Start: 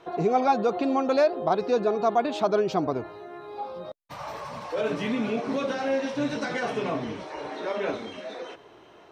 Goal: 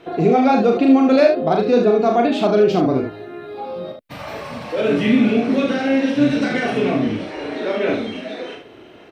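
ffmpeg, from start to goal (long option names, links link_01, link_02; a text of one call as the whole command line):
ffmpeg -i in.wav -af "equalizer=frequency=100:width_type=o:width=0.67:gain=3,equalizer=frequency=250:width_type=o:width=0.67:gain=6,equalizer=frequency=1000:width_type=o:width=0.67:gain=-8,equalizer=frequency=2500:width_type=o:width=0.67:gain=3,equalizer=frequency=6300:width_type=o:width=0.67:gain=-6,aecho=1:1:38|74:0.631|0.473,volume=6.5dB" out.wav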